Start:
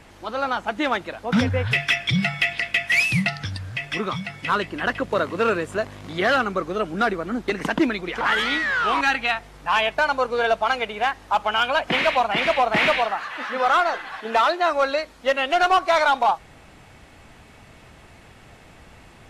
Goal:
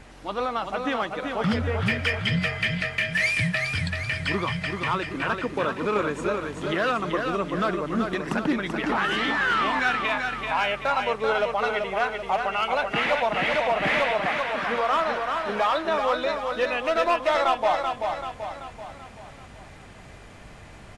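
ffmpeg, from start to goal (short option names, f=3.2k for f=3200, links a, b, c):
-af "alimiter=limit=-17dB:level=0:latency=1:release=227,aeval=exprs='val(0)+0.00282*(sin(2*PI*50*n/s)+sin(2*PI*2*50*n/s)/2+sin(2*PI*3*50*n/s)/3+sin(2*PI*4*50*n/s)/4+sin(2*PI*5*50*n/s)/5)':c=same,asetrate=40572,aresample=44100,aecho=1:1:385|770|1155|1540|1925|2310:0.562|0.281|0.141|0.0703|0.0351|0.0176"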